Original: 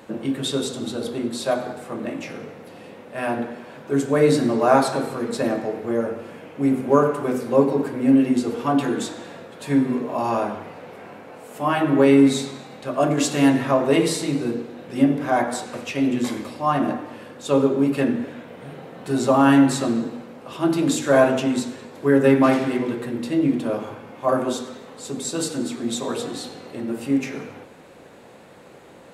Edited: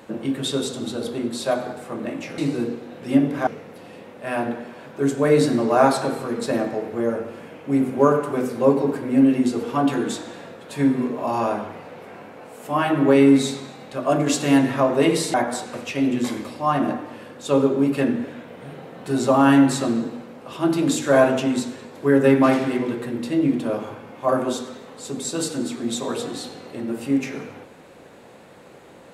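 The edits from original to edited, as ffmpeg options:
ffmpeg -i in.wav -filter_complex "[0:a]asplit=4[link_01][link_02][link_03][link_04];[link_01]atrim=end=2.382[link_05];[link_02]atrim=start=14.248:end=15.342[link_06];[link_03]atrim=start=2.378:end=14.252[link_07];[link_04]atrim=start=15.338[link_08];[link_05][link_06]acrossfade=duration=0.004:curve1=hsin:curve2=hsin[link_09];[link_09][link_07]acrossfade=duration=0.004:curve1=hsin:curve2=hsin[link_10];[link_10][link_08]acrossfade=duration=0.004:curve1=hsin:curve2=hsin" out.wav

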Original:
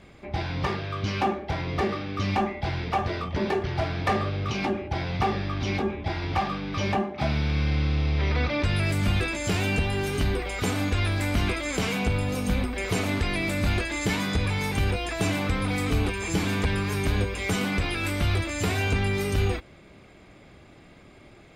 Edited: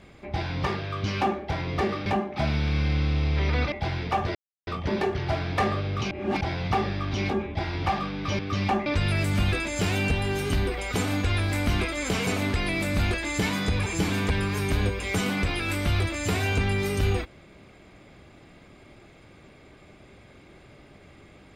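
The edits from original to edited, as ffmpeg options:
ffmpeg -i in.wav -filter_complex "[0:a]asplit=10[link_01][link_02][link_03][link_04][link_05][link_06][link_07][link_08][link_09][link_10];[link_01]atrim=end=2.062[link_11];[link_02]atrim=start=6.878:end=8.542[link_12];[link_03]atrim=start=2.528:end=3.16,asetpts=PTS-STARTPTS,afade=type=out:start_time=0.628:duration=0.004:curve=hsin,apad=pad_dur=0.32[link_13];[link_04]atrim=start=3.16:end=4.602,asetpts=PTS-STARTPTS,afade=type=in:duration=0.004:curve=hsin[link_14];[link_05]atrim=start=4.598:end=4.902,asetpts=PTS-STARTPTS,areverse[link_15];[link_06]atrim=start=4.898:end=6.882[link_16];[link_07]atrim=start=2.058:end=2.532[link_17];[link_08]atrim=start=8.538:end=11.952[link_18];[link_09]atrim=start=12.938:end=14.532[link_19];[link_10]atrim=start=16.208[link_20];[link_11][link_12]acrossfade=duration=0.004:curve1=hsin:curve2=hsin[link_21];[link_13][link_14]concat=n=2:v=0:a=1[link_22];[link_21][link_22]acrossfade=duration=0.004:curve1=hsin:curve2=hsin[link_23];[link_23][link_15]acrossfade=duration=0.004:curve1=hsin:curve2=hsin[link_24];[link_24][link_16]acrossfade=duration=0.004:curve1=hsin:curve2=hsin[link_25];[link_25][link_17]acrossfade=duration=0.004:curve1=hsin:curve2=hsin[link_26];[link_26][link_18]acrossfade=duration=0.004:curve1=hsin:curve2=hsin[link_27];[link_27][link_19]acrossfade=duration=0.004:curve1=hsin:curve2=hsin[link_28];[link_28][link_20]acrossfade=duration=0.004:curve1=hsin:curve2=hsin" out.wav

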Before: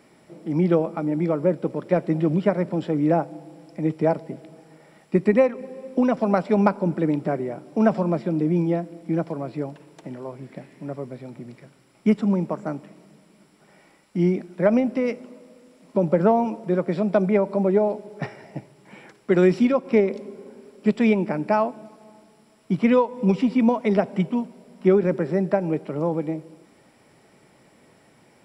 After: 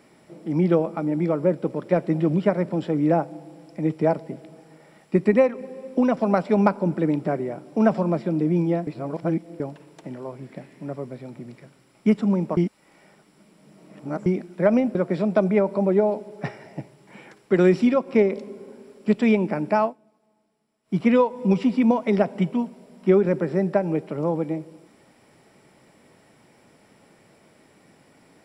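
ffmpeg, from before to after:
ffmpeg -i in.wav -filter_complex "[0:a]asplit=8[link_01][link_02][link_03][link_04][link_05][link_06][link_07][link_08];[link_01]atrim=end=8.872[link_09];[link_02]atrim=start=8.868:end=9.602,asetpts=PTS-STARTPTS,areverse[link_10];[link_03]atrim=start=9.598:end=12.572[link_11];[link_04]atrim=start=12.568:end=14.262,asetpts=PTS-STARTPTS,areverse[link_12];[link_05]atrim=start=14.258:end=14.952[link_13];[link_06]atrim=start=16.728:end=21.76,asetpts=PTS-STARTPTS,afade=type=out:start_time=4.902:duration=0.13:curve=qua:silence=0.125893[link_14];[link_07]atrim=start=21.76:end=22.6,asetpts=PTS-STARTPTS,volume=-18dB[link_15];[link_08]atrim=start=22.6,asetpts=PTS-STARTPTS,afade=type=in:duration=0.13:curve=qua:silence=0.125893[link_16];[link_09][link_10]acrossfade=duration=0.004:curve1=hsin:curve2=hsin[link_17];[link_17][link_11]acrossfade=duration=0.004:curve1=hsin:curve2=hsin[link_18];[link_18][link_12]acrossfade=duration=0.004:curve1=hsin:curve2=hsin[link_19];[link_19][link_13]acrossfade=duration=0.004:curve1=hsin:curve2=hsin[link_20];[link_14][link_15][link_16]concat=n=3:v=0:a=1[link_21];[link_20][link_21]acrossfade=duration=0.004:curve1=hsin:curve2=hsin" out.wav

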